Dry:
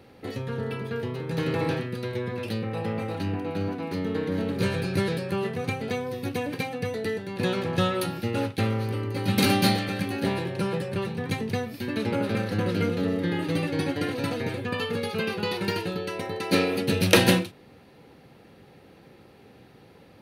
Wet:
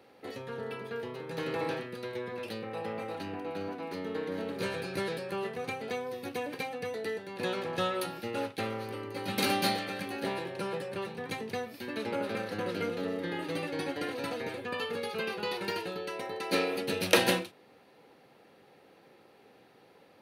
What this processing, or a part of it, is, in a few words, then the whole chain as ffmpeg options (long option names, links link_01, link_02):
filter by subtraction: -filter_complex "[0:a]asplit=2[link_01][link_02];[link_02]lowpass=620,volume=-1[link_03];[link_01][link_03]amix=inputs=2:normalize=0,volume=-5.5dB"